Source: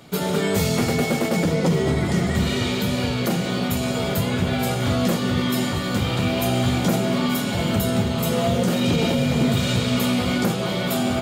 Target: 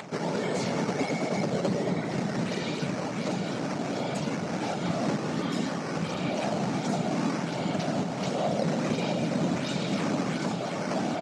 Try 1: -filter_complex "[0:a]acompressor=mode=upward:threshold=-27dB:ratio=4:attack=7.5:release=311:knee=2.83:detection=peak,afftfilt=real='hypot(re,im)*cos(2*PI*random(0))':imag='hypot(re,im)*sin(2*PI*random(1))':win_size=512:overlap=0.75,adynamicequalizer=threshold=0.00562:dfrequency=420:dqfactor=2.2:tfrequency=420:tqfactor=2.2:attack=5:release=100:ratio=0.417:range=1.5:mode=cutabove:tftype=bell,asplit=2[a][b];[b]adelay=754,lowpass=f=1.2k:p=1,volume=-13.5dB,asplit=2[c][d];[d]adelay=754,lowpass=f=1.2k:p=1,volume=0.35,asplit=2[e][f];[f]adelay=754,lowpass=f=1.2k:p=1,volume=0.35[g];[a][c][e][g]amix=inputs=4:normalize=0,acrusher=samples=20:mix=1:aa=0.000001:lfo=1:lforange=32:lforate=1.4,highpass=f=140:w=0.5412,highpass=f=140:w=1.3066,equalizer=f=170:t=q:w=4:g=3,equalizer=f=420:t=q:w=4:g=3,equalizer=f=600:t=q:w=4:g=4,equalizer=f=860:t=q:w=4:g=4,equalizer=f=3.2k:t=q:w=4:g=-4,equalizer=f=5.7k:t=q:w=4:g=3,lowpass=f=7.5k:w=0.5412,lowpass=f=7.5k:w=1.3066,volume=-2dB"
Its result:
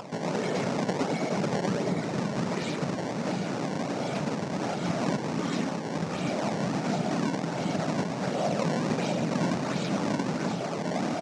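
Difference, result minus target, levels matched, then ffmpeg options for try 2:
decimation with a swept rate: distortion +5 dB
-filter_complex "[0:a]acompressor=mode=upward:threshold=-27dB:ratio=4:attack=7.5:release=311:knee=2.83:detection=peak,afftfilt=real='hypot(re,im)*cos(2*PI*random(0))':imag='hypot(re,im)*sin(2*PI*random(1))':win_size=512:overlap=0.75,adynamicequalizer=threshold=0.00562:dfrequency=420:dqfactor=2.2:tfrequency=420:tqfactor=2.2:attack=5:release=100:ratio=0.417:range=1.5:mode=cutabove:tftype=bell,asplit=2[a][b];[b]adelay=754,lowpass=f=1.2k:p=1,volume=-13.5dB,asplit=2[c][d];[d]adelay=754,lowpass=f=1.2k:p=1,volume=0.35,asplit=2[e][f];[f]adelay=754,lowpass=f=1.2k:p=1,volume=0.35[g];[a][c][e][g]amix=inputs=4:normalize=0,acrusher=samples=7:mix=1:aa=0.000001:lfo=1:lforange=11.2:lforate=1.4,highpass=f=140:w=0.5412,highpass=f=140:w=1.3066,equalizer=f=170:t=q:w=4:g=3,equalizer=f=420:t=q:w=4:g=3,equalizer=f=600:t=q:w=4:g=4,equalizer=f=860:t=q:w=4:g=4,equalizer=f=3.2k:t=q:w=4:g=-4,equalizer=f=5.7k:t=q:w=4:g=3,lowpass=f=7.5k:w=0.5412,lowpass=f=7.5k:w=1.3066,volume=-2dB"

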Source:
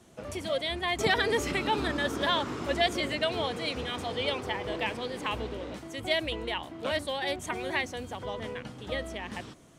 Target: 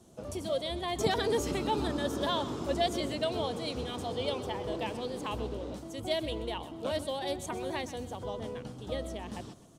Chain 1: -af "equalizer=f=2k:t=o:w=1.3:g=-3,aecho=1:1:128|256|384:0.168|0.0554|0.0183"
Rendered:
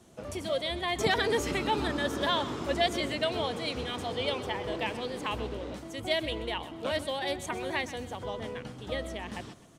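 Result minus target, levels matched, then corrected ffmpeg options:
2000 Hz band +6.0 dB
-af "equalizer=f=2k:t=o:w=1.3:g=-12.5,aecho=1:1:128|256|384:0.168|0.0554|0.0183"

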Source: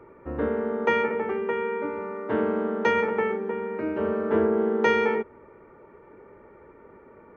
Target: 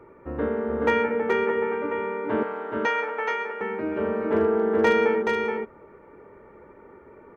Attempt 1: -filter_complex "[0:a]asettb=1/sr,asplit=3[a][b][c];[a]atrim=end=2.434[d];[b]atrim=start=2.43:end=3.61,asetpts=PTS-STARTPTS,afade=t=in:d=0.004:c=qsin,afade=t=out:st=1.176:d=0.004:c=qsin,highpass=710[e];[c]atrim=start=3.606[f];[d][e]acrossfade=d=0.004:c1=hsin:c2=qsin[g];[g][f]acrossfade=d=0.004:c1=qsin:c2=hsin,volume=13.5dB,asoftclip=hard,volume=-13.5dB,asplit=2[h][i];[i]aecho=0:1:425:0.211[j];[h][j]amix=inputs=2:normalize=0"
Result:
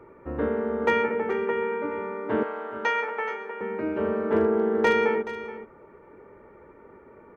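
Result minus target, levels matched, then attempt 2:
echo-to-direct -10 dB
-filter_complex "[0:a]asettb=1/sr,asplit=3[a][b][c];[a]atrim=end=2.434[d];[b]atrim=start=2.43:end=3.61,asetpts=PTS-STARTPTS,afade=t=in:d=0.004:c=qsin,afade=t=out:st=1.176:d=0.004:c=qsin,highpass=710[e];[c]atrim=start=3.606[f];[d][e]acrossfade=d=0.004:c1=hsin:c2=qsin[g];[g][f]acrossfade=d=0.004:c1=qsin:c2=hsin,volume=13.5dB,asoftclip=hard,volume=-13.5dB,asplit=2[h][i];[i]aecho=0:1:425:0.668[j];[h][j]amix=inputs=2:normalize=0"

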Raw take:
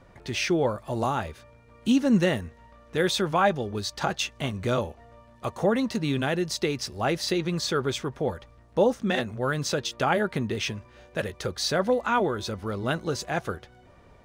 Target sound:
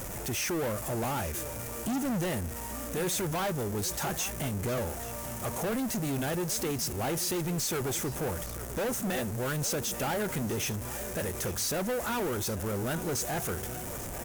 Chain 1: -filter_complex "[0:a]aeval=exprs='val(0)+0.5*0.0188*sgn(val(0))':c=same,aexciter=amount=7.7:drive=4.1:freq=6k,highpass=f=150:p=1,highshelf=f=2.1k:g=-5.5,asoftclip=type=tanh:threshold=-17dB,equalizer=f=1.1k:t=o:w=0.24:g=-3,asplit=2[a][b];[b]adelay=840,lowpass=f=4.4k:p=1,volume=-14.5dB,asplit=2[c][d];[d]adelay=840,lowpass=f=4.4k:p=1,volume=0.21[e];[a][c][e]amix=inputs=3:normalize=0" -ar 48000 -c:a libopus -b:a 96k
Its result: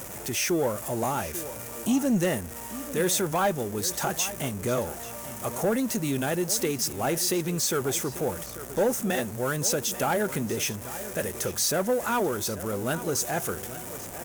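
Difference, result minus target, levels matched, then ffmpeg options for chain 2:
soft clip: distortion -11 dB; 125 Hz band -4.0 dB
-filter_complex "[0:a]aeval=exprs='val(0)+0.5*0.0188*sgn(val(0))':c=same,aexciter=amount=7.7:drive=4.1:freq=6k,highshelf=f=2.1k:g=-5.5,asoftclip=type=tanh:threshold=-28.5dB,equalizer=f=1.1k:t=o:w=0.24:g=-3,asplit=2[a][b];[b]adelay=840,lowpass=f=4.4k:p=1,volume=-14.5dB,asplit=2[c][d];[d]adelay=840,lowpass=f=4.4k:p=1,volume=0.21[e];[a][c][e]amix=inputs=3:normalize=0" -ar 48000 -c:a libopus -b:a 96k

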